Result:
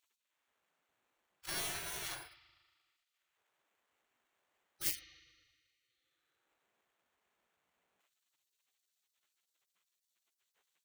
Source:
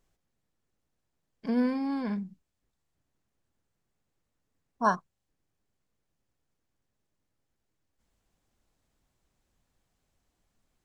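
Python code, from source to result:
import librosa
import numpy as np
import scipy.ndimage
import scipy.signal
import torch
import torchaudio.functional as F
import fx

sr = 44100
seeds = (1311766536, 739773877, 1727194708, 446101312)

y = fx.sample_hold(x, sr, seeds[0], rate_hz=5000.0, jitter_pct=0)
y = fx.rev_spring(y, sr, rt60_s=1.7, pass_ms=(38,), chirp_ms=30, drr_db=8.5)
y = fx.spec_gate(y, sr, threshold_db=-30, keep='weak')
y = y * librosa.db_to_amplitude(6.0)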